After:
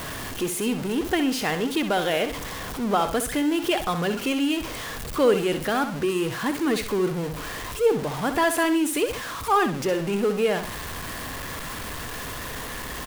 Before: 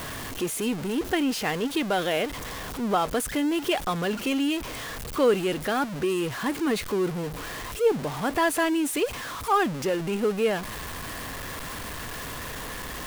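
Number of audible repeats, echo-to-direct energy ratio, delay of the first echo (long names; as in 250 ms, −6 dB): 2, −9.5 dB, 65 ms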